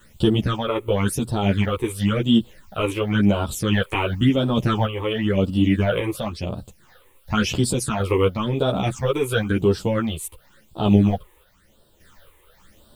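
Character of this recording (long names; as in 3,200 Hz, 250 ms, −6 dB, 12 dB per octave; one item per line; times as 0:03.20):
a quantiser's noise floor 10 bits, dither triangular
phaser sweep stages 8, 0.95 Hz, lowest notch 190–2,100 Hz
sample-and-hold tremolo 3.5 Hz, depth 55%
a shimmering, thickened sound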